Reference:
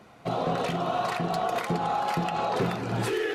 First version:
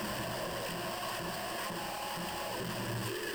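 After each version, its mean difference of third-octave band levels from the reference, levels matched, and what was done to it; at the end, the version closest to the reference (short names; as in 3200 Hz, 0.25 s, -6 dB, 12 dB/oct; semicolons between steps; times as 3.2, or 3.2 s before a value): 9.5 dB: infinite clipping; ripple EQ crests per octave 1.3, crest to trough 10 dB; flange 1.7 Hz, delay 1.7 ms, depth 9.6 ms, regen -66%; gain -6 dB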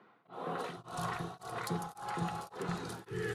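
6.5 dB: fifteen-band EQ 100 Hz +4 dB, 250 Hz -6 dB, 630 Hz -11 dB, 2500 Hz -7 dB, 10000 Hz +9 dB; three bands offset in time mids, highs, lows 0.33/0.51 s, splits 190/3300 Hz; beating tremolo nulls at 1.8 Hz; gain -3.5 dB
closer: second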